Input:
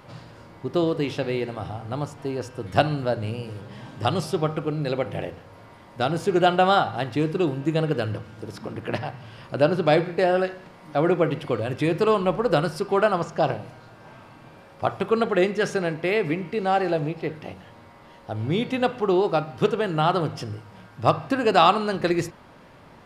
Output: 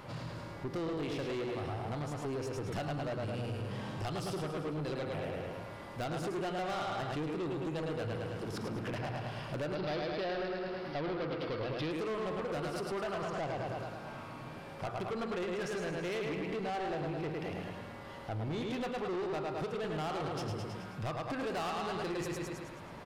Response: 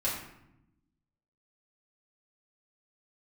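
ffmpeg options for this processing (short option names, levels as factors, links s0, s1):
-filter_complex "[0:a]aecho=1:1:107|214|321|428|535|642|749:0.562|0.292|0.152|0.0791|0.0411|0.0214|0.0111,acompressor=threshold=0.0316:ratio=3,asoftclip=type=tanh:threshold=0.0224,asettb=1/sr,asplit=3[s0][s1][s2];[s0]atrim=end=9.754[s3];[s1]atrim=start=9.75:end=11.91,asetpts=PTS-STARTPTS,afade=t=in:d=0.004:c=qsin,afade=t=out:st=2.156:d=0.004:c=qsin,highshelf=f=6000:t=q:w=3:g=-9[s4];[s2]atrim=start=11.906[s5];[s3][s4]acrossfade=d=0.004:c1=hsin:c2=qsin[s6];[s6][s5]acrossfade=d=0.004:c1=qsin:c2=hsin"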